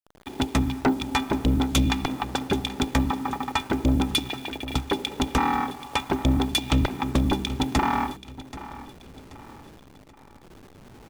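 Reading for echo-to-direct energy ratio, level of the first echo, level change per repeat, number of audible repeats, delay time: -15.5 dB, -16.0 dB, -8.0 dB, 3, 781 ms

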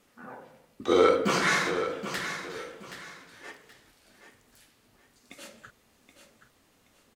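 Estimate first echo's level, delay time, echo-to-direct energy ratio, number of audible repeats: -10.0 dB, 775 ms, -9.5 dB, 2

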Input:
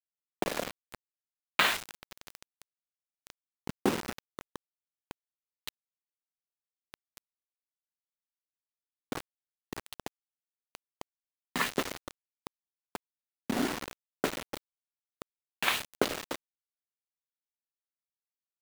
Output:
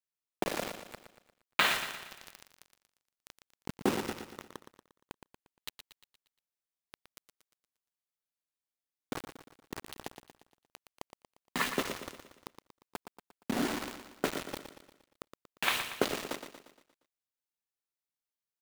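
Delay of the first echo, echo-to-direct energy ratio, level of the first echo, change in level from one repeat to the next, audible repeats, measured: 117 ms, -8.0 dB, -9.0 dB, -6.0 dB, 5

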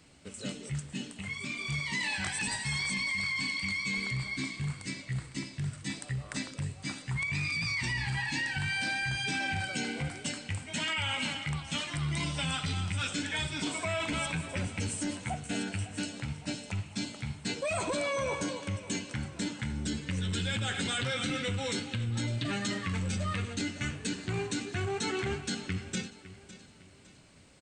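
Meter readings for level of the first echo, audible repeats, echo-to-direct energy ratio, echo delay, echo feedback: -16.0 dB, 3, -15.5 dB, 557 ms, 39%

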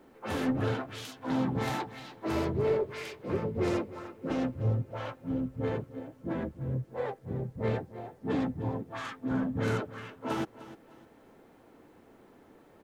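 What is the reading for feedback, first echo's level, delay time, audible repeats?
32%, -16.0 dB, 303 ms, 2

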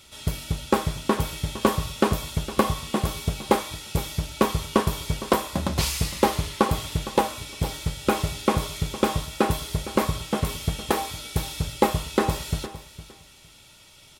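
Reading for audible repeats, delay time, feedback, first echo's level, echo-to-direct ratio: 2, 460 ms, 19%, -15.0 dB, -15.0 dB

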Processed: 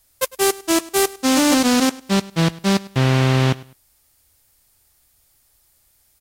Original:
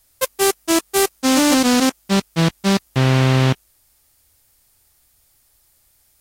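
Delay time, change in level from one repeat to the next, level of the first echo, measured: 102 ms, -11.0 dB, -20.5 dB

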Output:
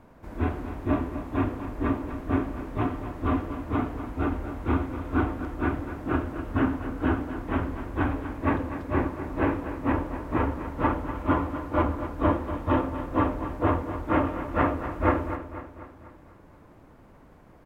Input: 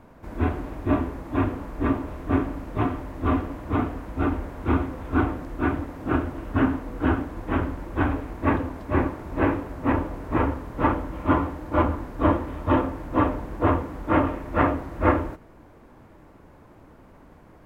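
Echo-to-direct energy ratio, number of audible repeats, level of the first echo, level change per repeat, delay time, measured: -9.5 dB, 5, -11.0 dB, -5.5 dB, 246 ms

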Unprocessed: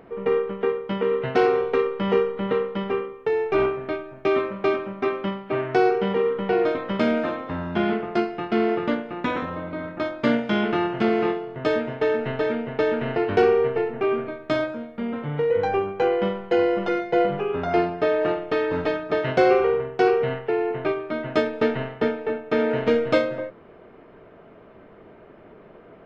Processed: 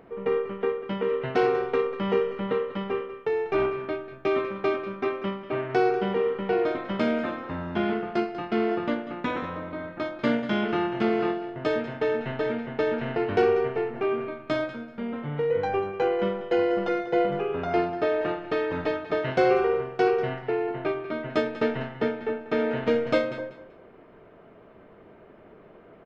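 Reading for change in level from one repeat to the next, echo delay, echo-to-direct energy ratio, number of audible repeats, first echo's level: -13.0 dB, 192 ms, -13.5 dB, 2, -13.5 dB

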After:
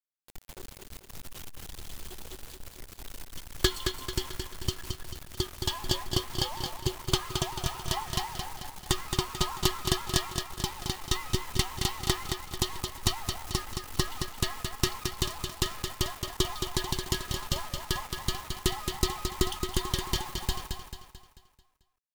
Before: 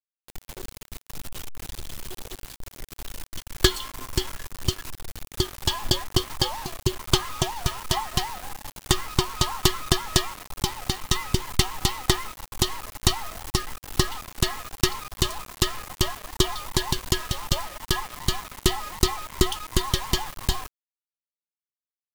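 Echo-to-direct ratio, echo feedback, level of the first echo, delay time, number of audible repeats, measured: -5.0 dB, 46%, -6.0 dB, 220 ms, 5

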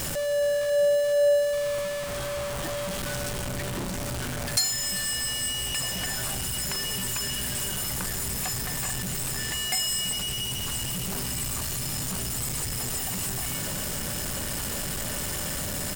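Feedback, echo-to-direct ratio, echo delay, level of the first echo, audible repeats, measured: 24%, -17.5 dB, 392 ms, -18.0 dB, 1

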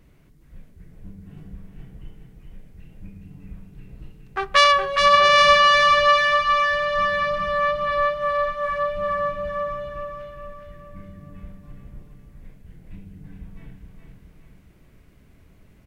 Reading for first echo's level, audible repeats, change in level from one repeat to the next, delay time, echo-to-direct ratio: -5.0 dB, 5, -6.5 dB, 416 ms, -4.0 dB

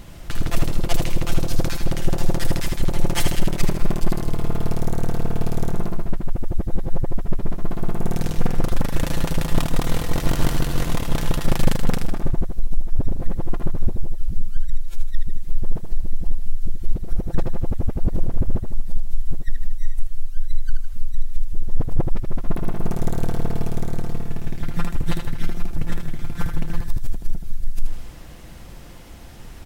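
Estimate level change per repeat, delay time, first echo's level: -7.0 dB, 78 ms, -6.0 dB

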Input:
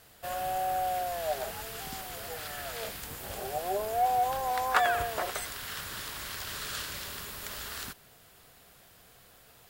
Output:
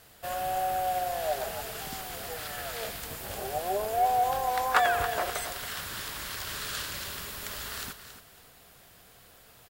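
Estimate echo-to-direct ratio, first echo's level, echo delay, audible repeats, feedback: -11.0 dB, -11.0 dB, 276 ms, 2, 23%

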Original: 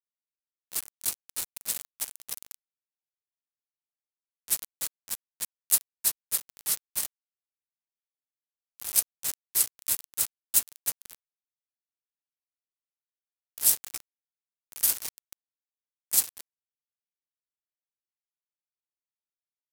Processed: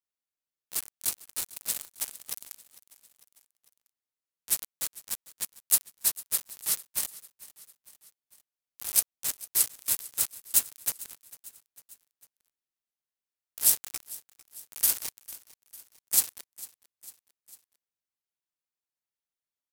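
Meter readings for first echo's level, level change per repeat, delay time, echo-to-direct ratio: -19.5 dB, -4.5 dB, 450 ms, -18.0 dB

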